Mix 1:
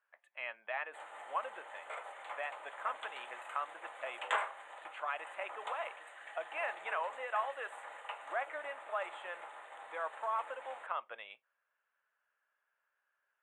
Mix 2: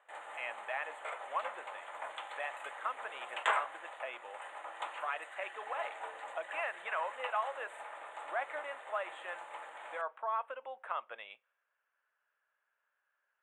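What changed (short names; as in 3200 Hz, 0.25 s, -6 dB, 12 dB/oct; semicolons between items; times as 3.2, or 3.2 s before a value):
background: entry -0.85 s; reverb: on, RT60 0.90 s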